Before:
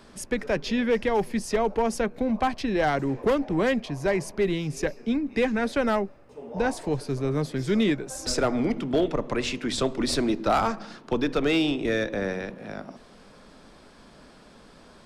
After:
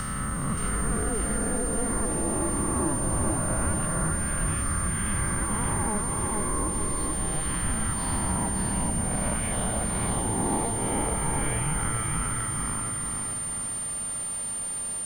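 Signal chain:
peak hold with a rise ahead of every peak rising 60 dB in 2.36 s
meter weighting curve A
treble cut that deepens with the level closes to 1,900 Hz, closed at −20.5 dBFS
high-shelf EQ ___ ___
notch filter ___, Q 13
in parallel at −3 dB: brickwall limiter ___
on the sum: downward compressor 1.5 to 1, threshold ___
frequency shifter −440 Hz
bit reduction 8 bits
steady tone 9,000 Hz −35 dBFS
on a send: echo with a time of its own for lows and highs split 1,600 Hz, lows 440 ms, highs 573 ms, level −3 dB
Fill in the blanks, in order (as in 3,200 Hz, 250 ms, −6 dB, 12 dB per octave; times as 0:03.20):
3,300 Hz, −10 dB, 6,400 Hz, −19.5 dBFS, −43 dBFS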